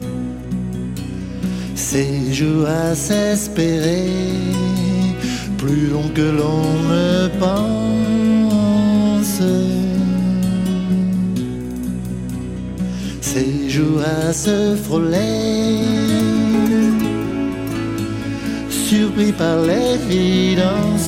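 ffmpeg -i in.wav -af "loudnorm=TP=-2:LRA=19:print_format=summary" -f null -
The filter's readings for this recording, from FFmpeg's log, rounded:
Input Integrated:    -17.6 LUFS
Input True Peak:      -5.0 dBTP
Input LRA:             4.3 LU
Input Threshold:     -27.6 LUFS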